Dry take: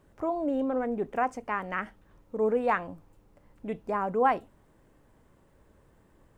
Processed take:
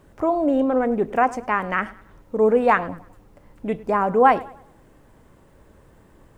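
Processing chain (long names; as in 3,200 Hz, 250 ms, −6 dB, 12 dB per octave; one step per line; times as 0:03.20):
tape delay 101 ms, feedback 41%, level −18 dB, low-pass 3,100 Hz
level +9 dB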